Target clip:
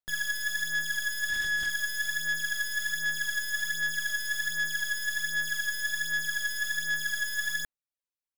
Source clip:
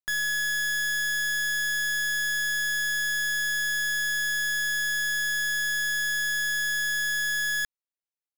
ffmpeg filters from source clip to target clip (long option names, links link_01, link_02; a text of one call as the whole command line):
ffmpeg -i in.wav -filter_complex "[0:a]aphaser=in_gain=1:out_gain=1:delay=2:decay=0.63:speed=1.3:type=sinusoidal,asettb=1/sr,asplit=3[link_01][link_02][link_03];[link_01]atrim=end=1.294[link_04];[link_02]atrim=start=1.29:end=1.7,asetpts=PTS-STARTPTS,afade=type=in:duration=0.004:curve=qsin,afade=type=out:start_time=0.406:duration=0.004:curve=qsin,asplit=2[link_05][link_06];[link_06]highpass=frequency=720:poles=1,volume=28dB,asoftclip=type=tanh:threshold=-18dB[link_07];[link_05][link_07]amix=inputs=2:normalize=0,lowpass=frequency=4000:poles=1,volume=-6dB[link_08];[link_03]atrim=start=1.696[link_09];[link_04][link_08]acrossfade=duration=0.004:curve1=hsin:curve2=qsin[link_10];[link_10][link_09]acrossfade=duration=0.004:curve1=qsin:curve2=hsin,volume=-6.5dB" out.wav